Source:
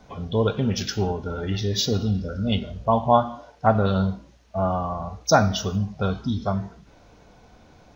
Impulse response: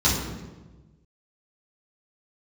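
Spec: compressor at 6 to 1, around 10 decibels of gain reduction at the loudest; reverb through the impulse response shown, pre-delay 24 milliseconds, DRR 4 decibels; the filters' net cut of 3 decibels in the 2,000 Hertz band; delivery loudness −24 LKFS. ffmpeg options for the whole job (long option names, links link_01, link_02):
-filter_complex "[0:a]equalizer=frequency=2000:width_type=o:gain=-5,acompressor=threshold=-23dB:ratio=6,asplit=2[link_01][link_02];[1:a]atrim=start_sample=2205,adelay=24[link_03];[link_02][link_03]afir=irnorm=-1:irlink=0,volume=-20dB[link_04];[link_01][link_04]amix=inputs=2:normalize=0,volume=-1.5dB"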